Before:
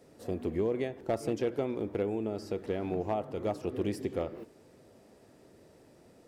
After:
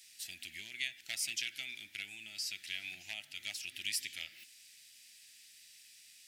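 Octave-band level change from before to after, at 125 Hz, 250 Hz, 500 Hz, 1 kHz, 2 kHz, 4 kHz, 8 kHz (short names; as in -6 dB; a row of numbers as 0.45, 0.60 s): -27.0, -30.5, -36.0, -25.5, +8.0, +14.0, +14.0 dB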